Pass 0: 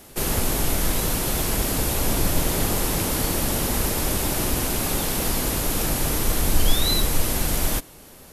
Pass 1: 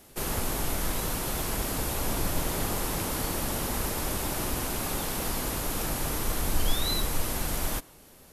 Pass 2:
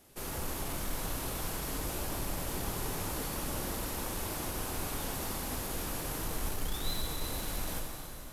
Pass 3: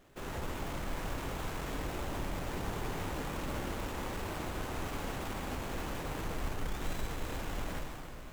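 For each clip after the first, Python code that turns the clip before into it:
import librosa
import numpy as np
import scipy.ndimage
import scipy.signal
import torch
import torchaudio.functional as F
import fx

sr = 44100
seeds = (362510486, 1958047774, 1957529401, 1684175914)

y1 = fx.dynamic_eq(x, sr, hz=1100.0, q=0.97, threshold_db=-45.0, ratio=4.0, max_db=4)
y1 = F.gain(torch.from_numpy(y1), -7.5).numpy()
y2 = 10.0 ** (-23.5 / 20.0) * np.tanh(y1 / 10.0 ** (-23.5 / 20.0))
y2 = fx.rev_plate(y2, sr, seeds[0], rt60_s=3.8, hf_ratio=0.9, predelay_ms=0, drr_db=0.0)
y2 = F.gain(torch.from_numpy(y2), -7.5).numpy()
y3 = fx.running_max(y2, sr, window=9)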